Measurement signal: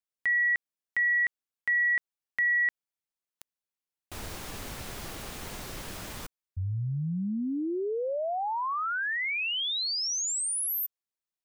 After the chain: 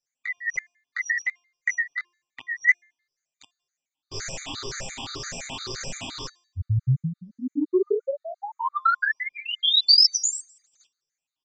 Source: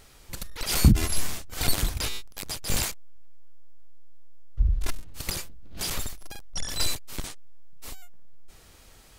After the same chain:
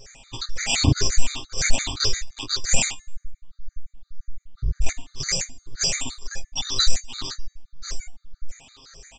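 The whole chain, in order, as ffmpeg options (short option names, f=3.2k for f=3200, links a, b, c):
-af "afftfilt=real='re*pow(10,15/40*sin(2*PI*(0.56*log(max(b,1)*sr/1024/100)/log(2)-(1.9)*(pts-256)/sr)))':imag='im*pow(10,15/40*sin(2*PI*(0.56*log(max(b,1)*sr/1024/100)/log(2)-(1.9)*(pts-256)/sr)))':win_size=1024:overlap=0.75,adynamicequalizer=threshold=0.00355:dfrequency=340:dqfactor=5.6:tfrequency=340:tqfactor=5.6:attack=5:release=100:ratio=0.3:range=1.5:mode=boostabove:tftype=bell,flanger=delay=16:depth=7.7:speed=2.8,asoftclip=type=tanh:threshold=-13dB,highshelf=f=3.4k:g=11.5,aecho=1:1:7.5:0.98,bandreject=f=350.7:t=h:w=4,bandreject=f=701.4:t=h:w=4,bandreject=f=1.0521k:t=h:w=4,bandreject=f=1.4028k:t=h:w=4,bandreject=f=1.7535k:t=h:w=4,bandreject=f=2.1042k:t=h:w=4,bandreject=f=2.4549k:t=h:w=4,bandreject=f=2.8056k:t=h:w=4,bandreject=f=3.1563k:t=h:w=4,bandreject=f=3.507k:t=h:w=4,bandreject=f=3.8577k:t=h:w=4,bandreject=f=4.2084k:t=h:w=4,bandreject=f=4.5591k:t=h:w=4,bandreject=f=4.9098k:t=h:w=4,bandreject=f=5.2605k:t=h:w=4,bandreject=f=5.6112k:t=h:w=4,bandreject=f=5.9619k:t=h:w=4,bandreject=f=6.3126k:t=h:w=4,bandreject=f=6.6633k:t=h:w=4,bandreject=f=7.014k:t=h:w=4,bandreject=f=7.3647k:t=h:w=4,bandreject=f=7.7154k:t=h:w=4,bandreject=f=8.0661k:t=h:w=4,bandreject=f=8.4168k:t=h:w=4,bandreject=f=8.7675k:t=h:w=4,bandreject=f=9.1182k:t=h:w=4,bandreject=f=9.4689k:t=h:w=4,bandreject=f=9.8196k:t=h:w=4,bandreject=f=10.1703k:t=h:w=4,bandreject=f=10.521k:t=h:w=4,bandreject=f=10.8717k:t=h:w=4,bandreject=f=11.2224k:t=h:w=4,aresample=16000,aresample=44100,afftfilt=real='re*gt(sin(2*PI*5.8*pts/sr)*(1-2*mod(floor(b*sr/1024/1200),2)),0)':imag='im*gt(sin(2*PI*5.8*pts/sr)*(1-2*mod(floor(b*sr/1024/1200),2)),0)':win_size=1024:overlap=0.75,volume=3.5dB"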